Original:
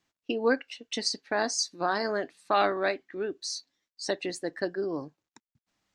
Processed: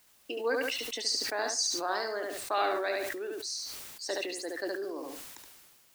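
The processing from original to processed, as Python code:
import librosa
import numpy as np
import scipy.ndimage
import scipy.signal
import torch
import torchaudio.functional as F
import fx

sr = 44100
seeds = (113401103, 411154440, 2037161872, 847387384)

y = scipy.signal.sosfilt(scipy.signal.butter(4, 320.0, 'highpass', fs=sr, output='sos'), x)
y = fx.high_shelf(y, sr, hz=5900.0, db=7.0)
y = fx.dmg_noise_colour(y, sr, seeds[0], colour='white', level_db=-58.0)
y = fx.echo_feedback(y, sr, ms=72, feedback_pct=18, wet_db=-6.0)
y = fx.sustainer(y, sr, db_per_s=29.0)
y = F.gain(torch.from_numpy(y), -6.0).numpy()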